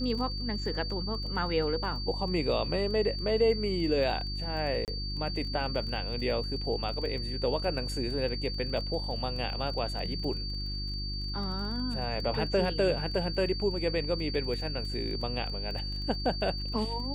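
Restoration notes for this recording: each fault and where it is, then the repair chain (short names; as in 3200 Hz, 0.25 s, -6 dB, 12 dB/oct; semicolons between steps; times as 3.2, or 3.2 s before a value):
crackle 21/s -38 dBFS
hum 50 Hz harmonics 7 -36 dBFS
tone 4600 Hz -37 dBFS
4.85–4.88 gap 28 ms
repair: de-click; notch 4600 Hz, Q 30; de-hum 50 Hz, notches 7; interpolate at 4.85, 28 ms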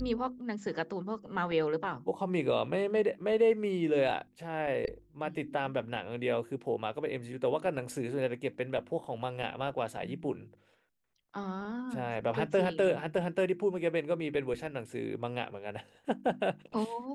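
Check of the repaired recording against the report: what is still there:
none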